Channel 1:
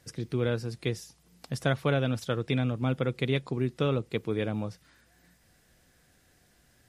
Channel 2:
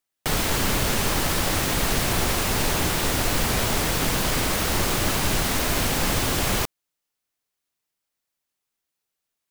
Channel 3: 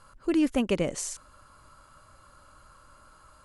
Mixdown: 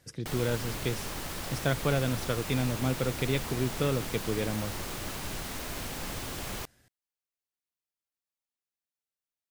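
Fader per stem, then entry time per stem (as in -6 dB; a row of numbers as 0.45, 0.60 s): -1.5 dB, -14.0 dB, off; 0.00 s, 0.00 s, off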